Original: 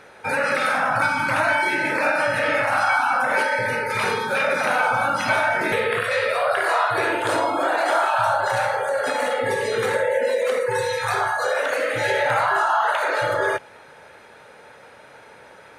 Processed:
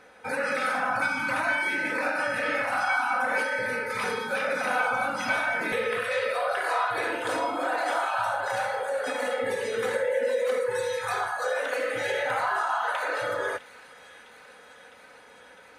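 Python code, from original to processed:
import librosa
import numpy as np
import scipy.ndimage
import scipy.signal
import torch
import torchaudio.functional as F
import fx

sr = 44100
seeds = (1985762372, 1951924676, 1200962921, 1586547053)

p1 = x + 0.54 * np.pad(x, (int(4.0 * sr / 1000.0), 0))[:len(x)]
p2 = p1 + fx.echo_wet_highpass(p1, sr, ms=656, feedback_pct=78, hz=2300.0, wet_db=-17, dry=0)
y = p2 * librosa.db_to_amplitude(-7.5)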